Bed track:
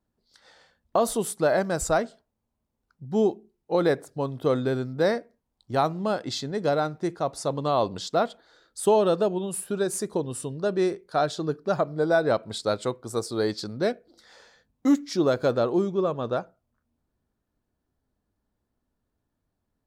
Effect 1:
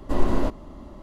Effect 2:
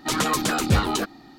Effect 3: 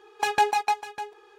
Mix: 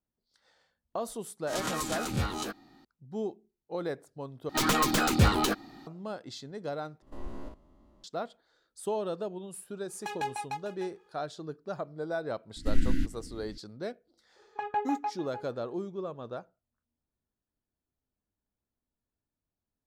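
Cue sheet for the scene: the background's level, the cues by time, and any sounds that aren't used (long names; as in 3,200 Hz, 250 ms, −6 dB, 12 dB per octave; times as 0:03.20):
bed track −12 dB
0:01.47: mix in 2 −12 dB + peak hold with a rise ahead of every peak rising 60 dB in 0.31 s
0:04.49: overwrite with 2 −2.5 dB + stylus tracing distortion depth 0.067 ms
0:07.02: overwrite with 1 −18 dB + spectrum averaged block by block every 50 ms
0:09.83: mix in 3 −12.5 dB
0:12.56: mix in 1 −3.5 dB + Chebyshev band-stop filter 320–1,500 Hz, order 5
0:14.36: mix in 3 −8.5 dB + low-pass filter 1,400 Hz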